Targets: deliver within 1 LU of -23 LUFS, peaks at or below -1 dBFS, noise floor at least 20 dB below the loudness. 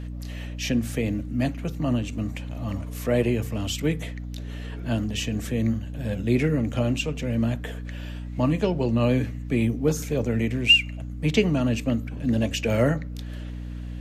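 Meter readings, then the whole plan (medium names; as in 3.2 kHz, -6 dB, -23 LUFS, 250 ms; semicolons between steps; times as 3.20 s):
hum 60 Hz; highest harmonic 300 Hz; hum level -31 dBFS; loudness -25.0 LUFS; peak level -6.0 dBFS; loudness target -23.0 LUFS
-> de-hum 60 Hz, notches 5; trim +2 dB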